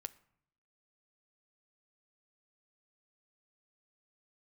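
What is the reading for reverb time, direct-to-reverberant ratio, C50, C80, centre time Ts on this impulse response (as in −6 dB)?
0.65 s, 12.5 dB, 19.5 dB, 22.0 dB, 3 ms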